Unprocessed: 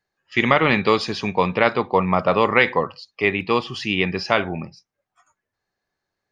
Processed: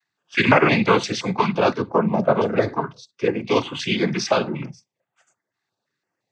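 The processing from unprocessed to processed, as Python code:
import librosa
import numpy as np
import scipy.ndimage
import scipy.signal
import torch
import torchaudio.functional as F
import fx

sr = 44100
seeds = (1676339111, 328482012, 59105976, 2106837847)

y = fx.peak_eq(x, sr, hz=2300.0, db=-13.0, octaves=1.6, at=(1.72, 3.46))
y = fx.noise_vocoder(y, sr, seeds[0], bands=16)
y = fx.filter_held_notch(y, sr, hz=5.8, low_hz=530.0, high_hz=5300.0)
y = y * 10.0 ** (2.5 / 20.0)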